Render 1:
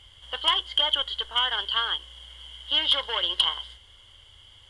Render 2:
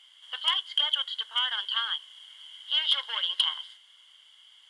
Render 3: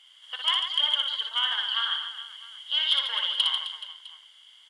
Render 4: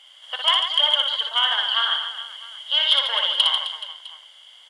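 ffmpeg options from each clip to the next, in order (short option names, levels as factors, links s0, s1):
-af "highpass=1200,volume=0.75"
-af "aecho=1:1:60|144|261.6|426.2|656.7:0.631|0.398|0.251|0.158|0.1"
-af "equalizer=f=640:t=o:w=0.79:g=12,volume=1.88"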